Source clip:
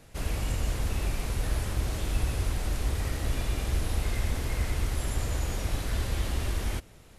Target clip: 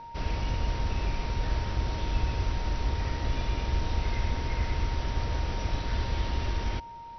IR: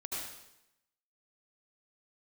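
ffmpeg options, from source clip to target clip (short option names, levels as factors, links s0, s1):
-af "aeval=exprs='val(0)+0.00891*sin(2*PI*930*n/s)':c=same" -ar 32000 -c:a mp2 -b:a 48k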